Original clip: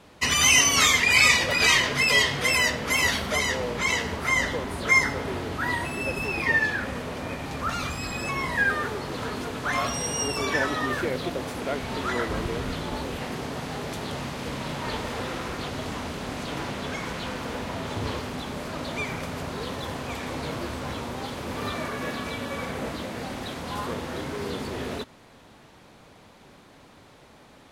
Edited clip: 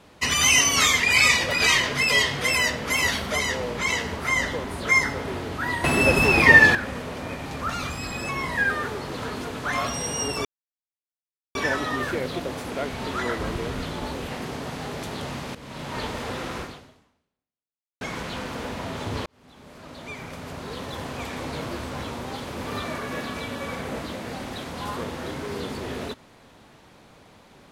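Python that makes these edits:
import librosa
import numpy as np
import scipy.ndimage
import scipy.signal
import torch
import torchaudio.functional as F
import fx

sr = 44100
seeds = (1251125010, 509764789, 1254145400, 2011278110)

y = fx.edit(x, sr, fx.clip_gain(start_s=5.84, length_s=0.91, db=10.5),
    fx.insert_silence(at_s=10.45, length_s=1.1),
    fx.fade_in_from(start_s=14.45, length_s=0.42, floor_db=-14.5),
    fx.fade_out_span(start_s=15.51, length_s=1.4, curve='exp'),
    fx.fade_in_span(start_s=18.16, length_s=1.87), tone=tone)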